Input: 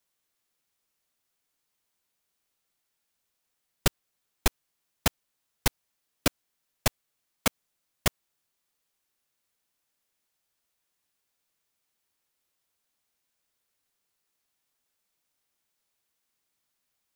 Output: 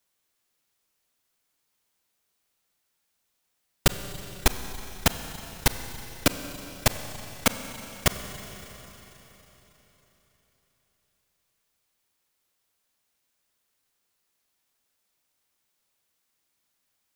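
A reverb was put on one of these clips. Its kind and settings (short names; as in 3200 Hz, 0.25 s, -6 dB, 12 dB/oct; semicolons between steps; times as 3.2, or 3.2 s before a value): Schroeder reverb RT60 4 s, combs from 31 ms, DRR 9 dB; gain +3 dB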